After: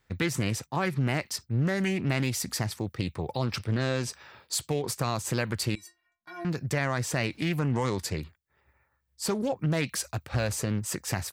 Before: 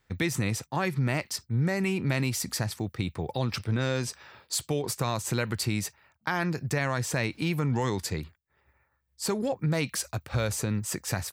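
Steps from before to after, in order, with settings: 5.75–6.45 s: inharmonic resonator 340 Hz, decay 0.27 s, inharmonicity 0.008; loudspeaker Doppler distortion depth 0.36 ms

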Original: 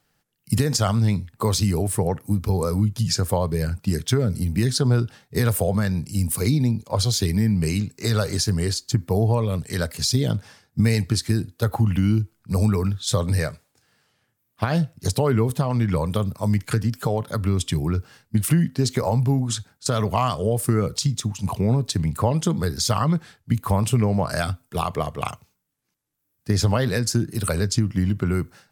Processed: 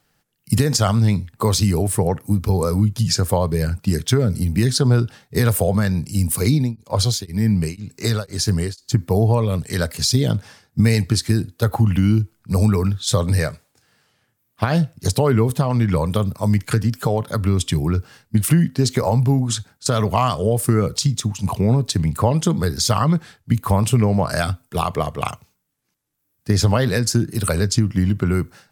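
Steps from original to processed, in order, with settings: 6.52–8.92 s: tremolo of two beating tones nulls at 2 Hz; trim +3.5 dB

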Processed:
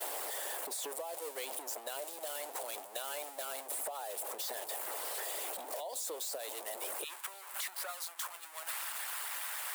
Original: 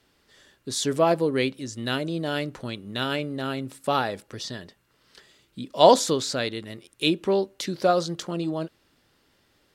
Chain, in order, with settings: jump at every zero crossing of -20.5 dBFS; high-pass 580 Hz 24 dB/octave, from 7.04 s 1.2 kHz; expander -24 dBFS; high-order bell 2.7 kHz -13 dB 2.8 oct; harmonic-percussive split harmonic -10 dB; compression 4:1, threshold -33 dBFS, peak gain reduction 16.5 dB; peak limiter -30 dBFS, peak gain reduction 9 dB; short-mantissa float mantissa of 6-bit; three bands compressed up and down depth 100%

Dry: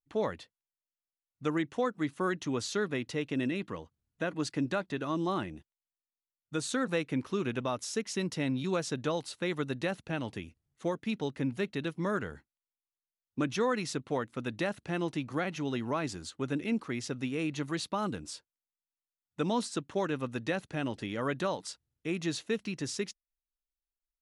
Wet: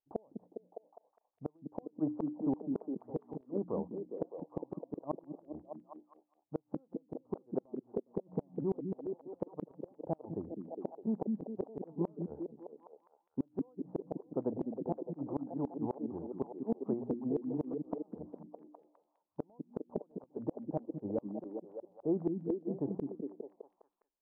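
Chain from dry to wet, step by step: steep low-pass 850 Hz 48 dB/octave; tilt EQ +4.5 dB/octave; hum notches 60/120/180/240/300 Hz; inverted gate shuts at -32 dBFS, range -37 dB; on a send: repeats whose band climbs or falls 204 ms, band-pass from 220 Hz, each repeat 0.7 oct, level -1 dB; on the sum: trim +10 dB

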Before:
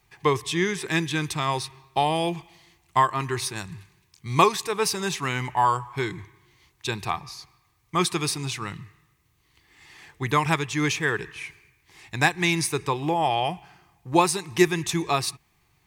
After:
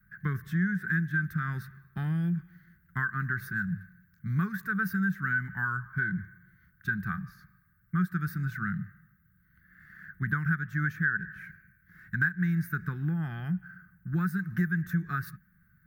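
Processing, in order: FFT filter 130 Hz 0 dB, 190 Hz +13 dB, 280 Hz -9 dB, 560 Hz -29 dB, 1 kHz -26 dB, 1.5 kHz +15 dB, 2.5 kHz -26 dB, 5 kHz -25 dB, 9 kHz -27 dB, 15 kHz +3 dB; compression 3:1, threshold -27 dBFS, peak gain reduction 12 dB

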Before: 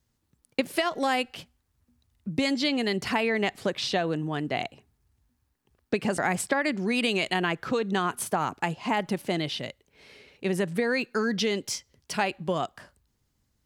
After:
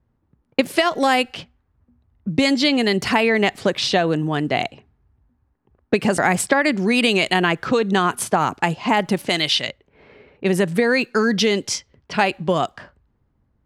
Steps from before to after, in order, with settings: level-controlled noise filter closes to 1.2 kHz, open at -25.5 dBFS; 9.29–9.69 s: tilt shelf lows -7.5 dB; trim +8.5 dB

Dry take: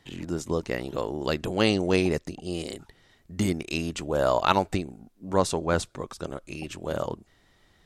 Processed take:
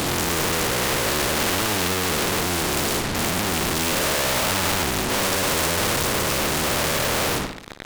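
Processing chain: every event in the spectrogram widened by 480 ms; tilt shelf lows +9 dB, about 1.2 kHz; in parallel at +2 dB: gain riding within 4 dB; on the sum: fuzz box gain 32 dB, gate -32 dBFS; flutter echo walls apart 9.6 m, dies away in 0.33 s; spectrum-flattening compressor 2:1

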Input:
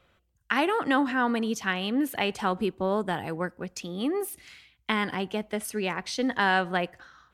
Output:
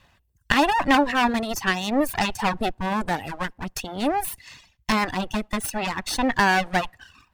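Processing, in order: comb filter that takes the minimum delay 1.1 ms; reverb removal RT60 0.67 s; trim +8.5 dB

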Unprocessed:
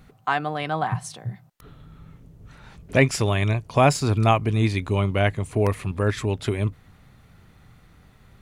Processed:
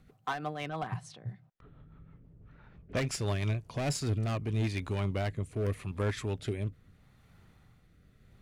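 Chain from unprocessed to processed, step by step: overload inside the chain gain 18 dB; 0.69–2.97 s: level-controlled noise filter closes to 1.7 kHz, open at -21.5 dBFS; rotary cabinet horn 6 Hz, later 0.8 Hz, at 3.32 s; trim -7 dB

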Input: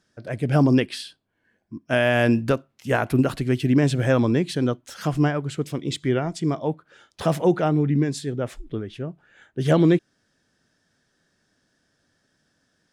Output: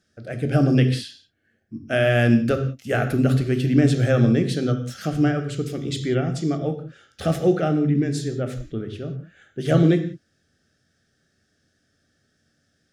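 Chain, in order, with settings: Butterworth band-stop 970 Hz, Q 2.5; on a send: reverberation, pre-delay 3 ms, DRR 7 dB; on the sum: trim -1 dB

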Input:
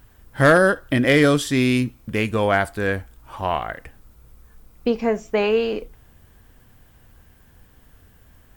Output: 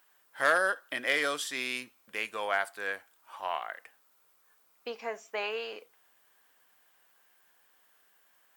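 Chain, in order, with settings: high-pass 790 Hz 12 dB/octave; trim -7.5 dB

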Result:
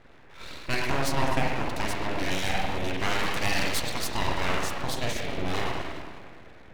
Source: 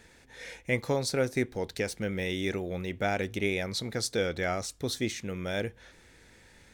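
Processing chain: 2.31–3.97 s: peaking EQ 12 kHz +8 dB 2.5 oct; spring tank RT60 1.6 s, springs 44/49 ms, chirp 80 ms, DRR -3 dB; in parallel at -1 dB: compression, threshold -39 dBFS, peak gain reduction 18.5 dB; on the sum: level-controlled noise filter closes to 1.2 kHz, open at -21.5 dBFS; full-wave rectifier

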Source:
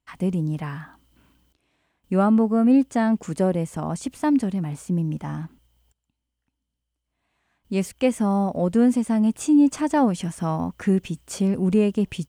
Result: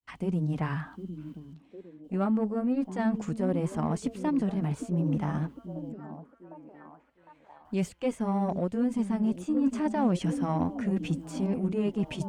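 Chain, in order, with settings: de-esser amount 70%; treble shelf 7.6 kHz -9.5 dB; reverse; compression 5:1, threshold -27 dBFS, peak gain reduction 12.5 dB; reverse; granulator 159 ms, grains 14 per s, spray 14 ms, pitch spread up and down by 0 st; on a send: repeats whose band climbs or falls 756 ms, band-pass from 260 Hz, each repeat 0.7 oct, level -6.5 dB; on the sum: Chebyshev shaper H 7 -43 dB, 8 -34 dB, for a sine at -18 dBFS; trim +3 dB

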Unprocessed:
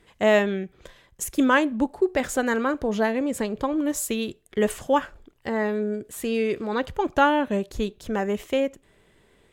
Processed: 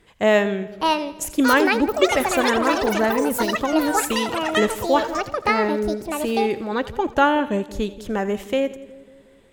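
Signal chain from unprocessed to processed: ever faster or slower copies 675 ms, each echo +7 st, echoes 3; two-band feedback delay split 610 Hz, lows 182 ms, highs 84 ms, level -16 dB; trim +2 dB

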